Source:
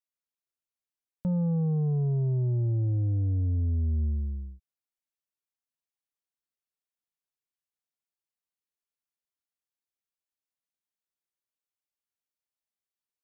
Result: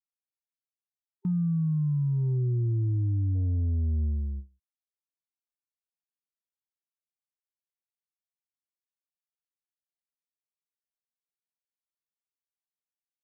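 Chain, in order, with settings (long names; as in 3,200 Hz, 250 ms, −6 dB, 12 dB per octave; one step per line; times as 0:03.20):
noise gate with hold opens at −28 dBFS
time-frequency box erased 0:00.47–0:03.35, 390–890 Hz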